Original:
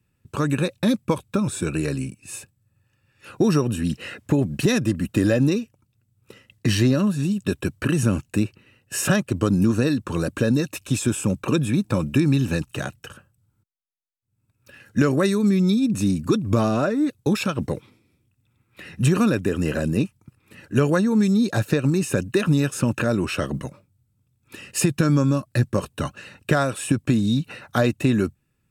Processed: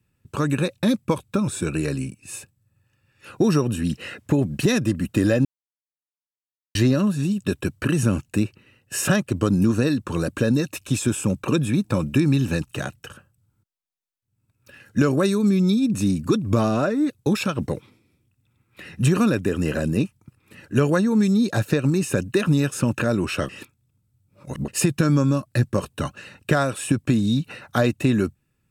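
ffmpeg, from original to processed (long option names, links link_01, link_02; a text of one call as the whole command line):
ffmpeg -i in.wav -filter_complex "[0:a]asettb=1/sr,asplit=3[link_01][link_02][link_03];[link_01]atrim=end=14.984[link_04];[link_02]atrim=start=14.98:end=15.79,asetpts=PTS-STARTPTS,afade=type=in:duration=0.004:curve=qsin,afade=type=out:start_time=0.806:duration=0.004:curve=qsin,bandreject=frequency=1900:width=5.5[link_05];[link_03]atrim=start=15.786[link_06];[link_04][link_05]acrossfade=duration=0.004:curve1=hsin:curve2=qsin[link_07];[link_07][link_06]acrossfade=duration=0.004:curve1=qsin:curve2=hsin,asplit=5[link_08][link_09][link_10][link_11][link_12];[link_08]atrim=end=5.45,asetpts=PTS-STARTPTS,afade=type=out:start_time=5.446:duration=0.004:curve=hsin[link_13];[link_09]atrim=start=5.45:end=6.75,asetpts=PTS-STARTPTS,volume=0[link_14];[link_10]atrim=start=6.75:end=23.492,asetpts=PTS-STARTPTS,afade=type=in:duration=0.004:curve=hsin[link_15];[link_11]atrim=start=23.488:end=24.682,asetpts=PTS-STARTPTS,areverse[link_16];[link_12]atrim=start=24.678[link_17];[link_13][link_14][link_15]concat=n=3:v=0:a=1[link_18];[link_18][link_16]acrossfade=duration=0.004:curve1=hsin:curve2=hsin[link_19];[link_19][link_17]acrossfade=duration=0.004:curve1=hsin:curve2=hsin" out.wav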